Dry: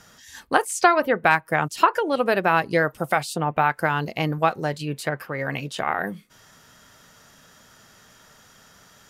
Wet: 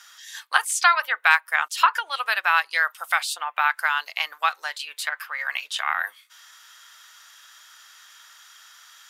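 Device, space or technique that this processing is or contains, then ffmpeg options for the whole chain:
headphones lying on a table: -af "highpass=frequency=1100:width=0.5412,highpass=frequency=1100:width=1.3066,equalizer=frequency=3500:width_type=o:width=0.41:gain=5,volume=3.5dB"

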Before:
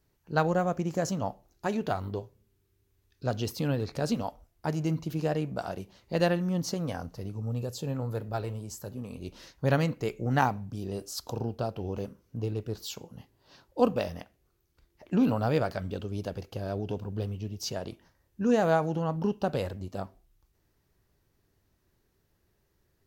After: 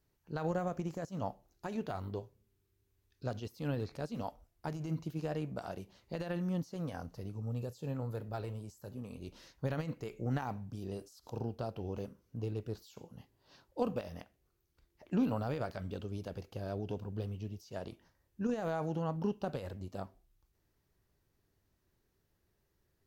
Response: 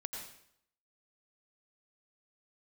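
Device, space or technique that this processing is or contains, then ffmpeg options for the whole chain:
de-esser from a sidechain: -filter_complex "[0:a]asplit=2[link_01][link_02];[link_02]highpass=6600,apad=whole_len=1017221[link_03];[link_01][link_03]sidechaincompress=threshold=-56dB:ratio=8:attack=3.5:release=48,volume=-5.5dB"

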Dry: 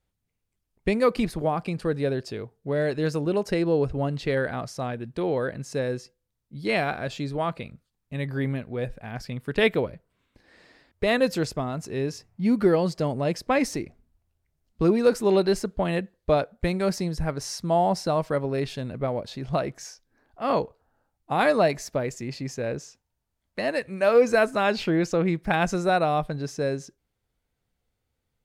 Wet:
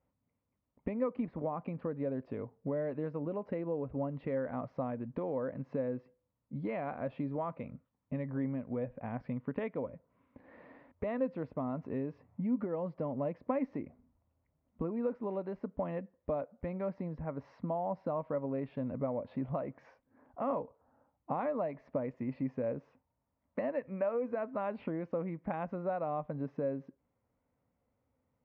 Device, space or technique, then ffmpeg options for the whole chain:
bass amplifier: -af "acompressor=threshold=-37dB:ratio=5,highpass=77,equalizer=frequency=260:width_type=q:width=4:gain=9,equalizer=frequency=370:width_type=q:width=4:gain=-5,equalizer=frequency=550:width_type=q:width=4:gain=7,equalizer=frequency=1000:width_type=q:width=4:gain=6,equalizer=frequency=1600:width_type=q:width=4:gain=-7,lowpass=frequency=2000:width=0.5412,lowpass=frequency=2000:width=1.3066"

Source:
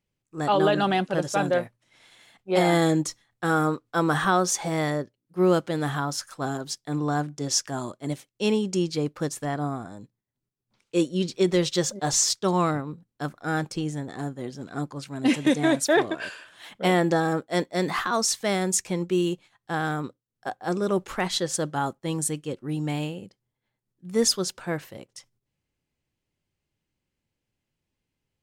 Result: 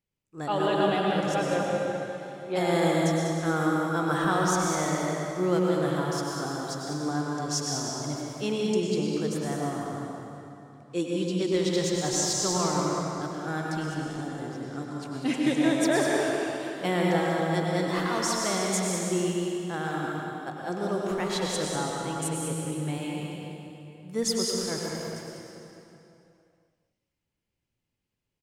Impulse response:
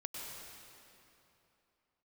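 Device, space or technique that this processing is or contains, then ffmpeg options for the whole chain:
cave: -filter_complex "[0:a]aecho=1:1:197:0.376[link_01];[1:a]atrim=start_sample=2205[link_02];[link_01][link_02]afir=irnorm=-1:irlink=0,volume=-2dB"

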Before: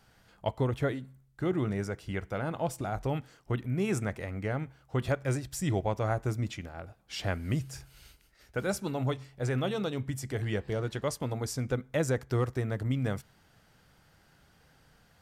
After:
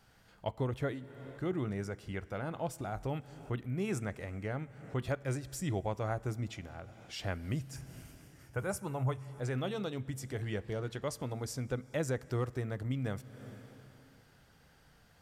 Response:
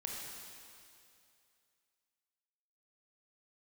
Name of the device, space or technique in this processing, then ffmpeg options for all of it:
ducked reverb: -filter_complex "[0:a]asettb=1/sr,asplit=3[link_01][link_02][link_03];[link_01]atrim=end=7.764[link_04];[link_02]atrim=start=7.76:end=9.28,asetpts=PTS-STARTPTS,afade=type=in:duration=0.004:curve=qsin,afade=type=out:start_time=1.516:duration=0.004:curve=qsin,equalizer=frequency=100:width_type=o:width=0.67:gain=11,equalizer=frequency=250:width_type=o:width=0.67:gain=-6,equalizer=frequency=1000:width_type=o:width=0.67:gain=5,equalizer=frequency=4000:width_type=o:width=0.67:gain=-11,equalizer=frequency=10000:width_type=o:width=0.67:gain=5[link_05];[link_03]atrim=start=9.276[link_06];[link_04][link_05]acrossfade=duration=0.004:curve1=hsin:curve2=qsin[link_07];[link_07][link_06]acrossfade=duration=0.004:curve1=qsin:curve2=hsin,asplit=3[link_08][link_09][link_10];[1:a]atrim=start_sample=2205[link_11];[link_09][link_11]afir=irnorm=-1:irlink=0[link_12];[link_10]apad=whole_len=671107[link_13];[link_12][link_13]sidechaincompress=threshold=-52dB:ratio=4:attack=10:release=187,volume=-2dB[link_14];[link_08][link_14]amix=inputs=2:normalize=0,volume=-5.5dB"

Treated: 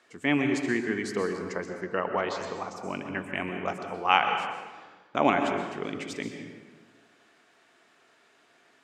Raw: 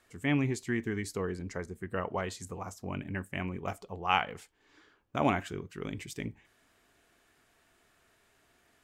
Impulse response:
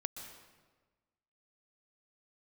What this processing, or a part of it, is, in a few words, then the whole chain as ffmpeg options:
supermarket ceiling speaker: -filter_complex "[0:a]highpass=250,lowpass=6200[link_01];[1:a]atrim=start_sample=2205[link_02];[link_01][link_02]afir=irnorm=-1:irlink=0,asettb=1/sr,asplit=3[link_03][link_04][link_05];[link_03]atrim=end=1.814[link_06];[link_04]atrim=start=1.81:end=2.76,asetpts=PTS-STARTPTS,afade=type=in:duration=0.004:curve=qsin,afade=type=out:start_time=0.946:duration=0.004:curve=qsin,lowpass=frequency=6400:width=0.5412,lowpass=frequency=6400:width=1.3066[link_07];[link_05]atrim=start=2.756[link_08];[link_06][link_07]acrossfade=duration=0.004:curve1=hsin:curve2=qsin[link_09];[link_09][link_08]acrossfade=duration=0.004:curve1=qsin:curve2=hsin,volume=7.5dB"

